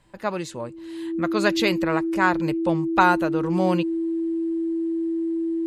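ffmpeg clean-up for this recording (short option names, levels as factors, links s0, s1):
-af "bandreject=f=330:w=30"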